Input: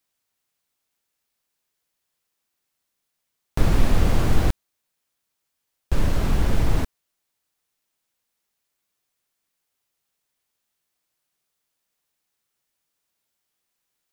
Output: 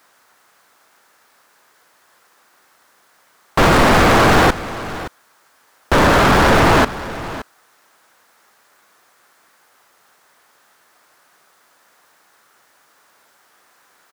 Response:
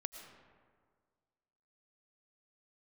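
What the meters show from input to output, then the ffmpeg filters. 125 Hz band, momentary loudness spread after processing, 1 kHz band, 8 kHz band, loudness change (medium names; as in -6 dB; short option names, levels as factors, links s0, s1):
+4.5 dB, 18 LU, +21.0 dB, +13.0 dB, +10.5 dB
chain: -filter_complex "[0:a]highshelf=f=2000:t=q:w=1.5:g=-8,asplit=2[s0][s1];[s1]highpass=f=720:p=1,volume=89.1,asoftclip=type=tanh:threshold=0.596[s2];[s0][s2]amix=inputs=2:normalize=0,lowpass=f=5000:p=1,volume=0.501,aecho=1:1:571:0.168"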